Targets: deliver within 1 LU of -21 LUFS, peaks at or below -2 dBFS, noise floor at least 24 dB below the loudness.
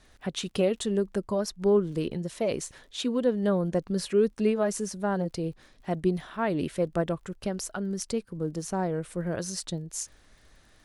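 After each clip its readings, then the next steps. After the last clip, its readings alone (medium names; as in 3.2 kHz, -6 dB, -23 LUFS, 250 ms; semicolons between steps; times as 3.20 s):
tick rate 53 per s; loudness -29.5 LUFS; peak level -13.5 dBFS; loudness target -21.0 LUFS
-> de-click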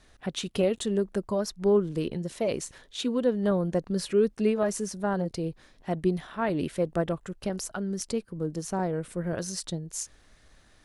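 tick rate 0.092 per s; loudness -29.5 LUFS; peak level -13.5 dBFS; loudness target -21.0 LUFS
-> trim +8.5 dB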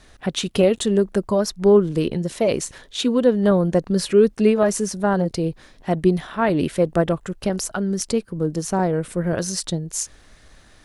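loudness -21.0 LUFS; peak level -5.0 dBFS; noise floor -51 dBFS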